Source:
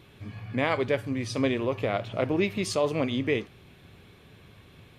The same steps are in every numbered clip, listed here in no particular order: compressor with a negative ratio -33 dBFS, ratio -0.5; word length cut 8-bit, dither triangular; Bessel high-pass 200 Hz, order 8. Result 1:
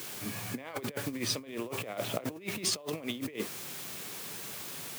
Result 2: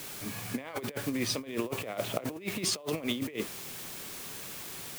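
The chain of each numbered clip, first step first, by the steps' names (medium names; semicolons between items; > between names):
word length cut > compressor with a negative ratio > Bessel high-pass; Bessel high-pass > word length cut > compressor with a negative ratio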